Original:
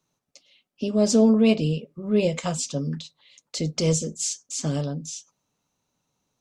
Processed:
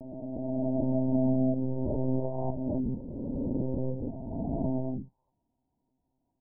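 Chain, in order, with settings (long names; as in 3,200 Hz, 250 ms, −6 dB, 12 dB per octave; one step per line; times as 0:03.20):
peak hold with a rise ahead of every peak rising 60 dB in 2.52 s
downward compressor, threshold −20 dBFS, peak gain reduction 8 dB
Chebyshev low-pass with heavy ripple 980 Hz, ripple 9 dB
one-pitch LPC vocoder at 8 kHz 130 Hz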